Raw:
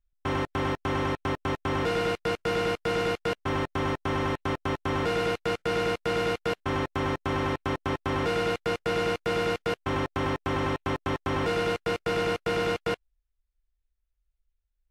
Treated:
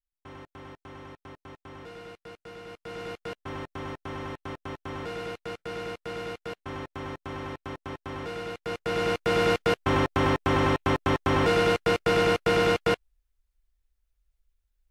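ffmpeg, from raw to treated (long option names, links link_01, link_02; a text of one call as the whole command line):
ffmpeg -i in.wav -af "volume=4.5dB,afade=type=in:start_time=2.65:duration=0.57:silence=0.375837,afade=type=in:start_time=8.55:duration=0.97:silence=0.223872" out.wav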